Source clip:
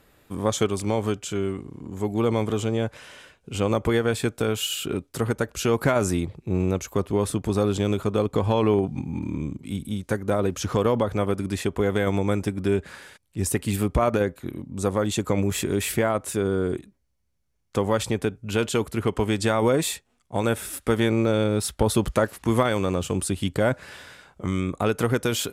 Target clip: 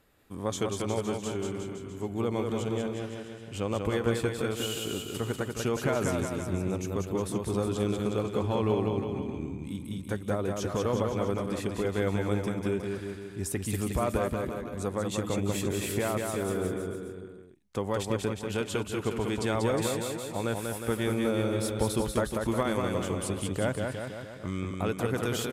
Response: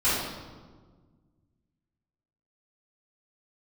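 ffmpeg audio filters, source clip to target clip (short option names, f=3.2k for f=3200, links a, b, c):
-af "aecho=1:1:190|361|514.9|653.4|778.1:0.631|0.398|0.251|0.158|0.1,volume=-8dB"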